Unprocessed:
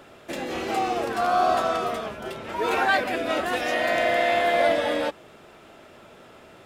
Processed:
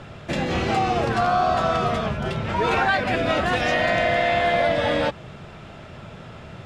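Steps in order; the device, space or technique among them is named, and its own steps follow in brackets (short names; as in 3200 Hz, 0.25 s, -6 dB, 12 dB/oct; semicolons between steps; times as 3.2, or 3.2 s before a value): jukebox (LPF 6100 Hz 12 dB/oct; resonant low shelf 210 Hz +11 dB, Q 1.5; compressor 4:1, threshold -24 dBFS, peak gain reduction 6.5 dB); gain +6.5 dB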